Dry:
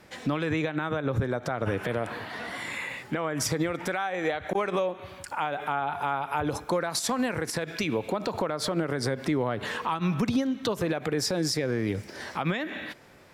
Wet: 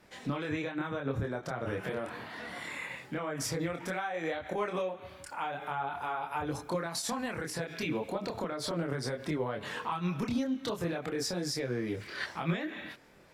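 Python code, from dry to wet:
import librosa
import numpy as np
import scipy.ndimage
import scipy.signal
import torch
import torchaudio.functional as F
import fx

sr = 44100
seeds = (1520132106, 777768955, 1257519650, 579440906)

y = fx.chorus_voices(x, sr, voices=4, hz=0.47, base_ms=26, depth_ms=3.8, mix_pct=45)
y = fx.spec_box(y, sr, start_s=12.01, length_s=0.25, low_hz=1000.0, high_hz=4800.0, gain_db=11)
y = y * 10.0 ** (-3.0 / 20.0)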